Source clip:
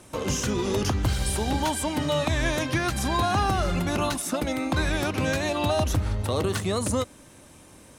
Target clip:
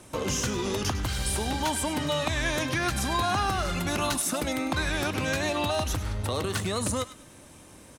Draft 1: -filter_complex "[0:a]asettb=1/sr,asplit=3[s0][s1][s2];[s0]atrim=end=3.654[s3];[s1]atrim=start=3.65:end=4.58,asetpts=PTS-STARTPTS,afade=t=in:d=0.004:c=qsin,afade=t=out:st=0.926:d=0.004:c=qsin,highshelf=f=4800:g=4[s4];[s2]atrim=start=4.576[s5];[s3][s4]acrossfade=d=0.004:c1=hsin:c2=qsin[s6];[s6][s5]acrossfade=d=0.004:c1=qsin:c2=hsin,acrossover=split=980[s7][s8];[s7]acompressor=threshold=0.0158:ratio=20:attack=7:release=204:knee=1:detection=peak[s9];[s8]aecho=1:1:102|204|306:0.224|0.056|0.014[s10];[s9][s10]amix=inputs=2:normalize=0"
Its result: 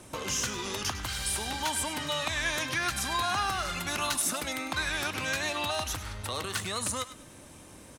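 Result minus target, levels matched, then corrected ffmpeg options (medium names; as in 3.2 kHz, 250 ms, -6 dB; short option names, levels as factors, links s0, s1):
compression: peak gain reduction +9.5 dB
-filter_complex "[0:a]asettb=1/sr,asplit=3[s0][s1][s2];[s0]atrim=end=3.654[s3];[s1]atrim=start=3.65:end=4.58,asetpts=PTS-STARTPTS,afade=t=in:d=0.004:c=qsin,afade=t=out:st=0.926:d=0.004:c=qsin,highshelf=f=4800:g=4[s4];[s2]atrim=start=4.576[s5];[s3][s4]acrossfade=d=0.004:c1=hsin:c2=qsin[s6];[s6][s5]acrossfade=d=0.004:c1=qsin:c2=hsin,acrossover=split=980[s7][s8];[s7]acompressor=threshold=0.0501:ratio=20:attack=7:release=204:knee=1:detection=peak[s9];[s8]aecho=1:1:102|204|306:0.224|0.056|0.014[s10];[s9][s10]amix=inputs=2:normalize=0"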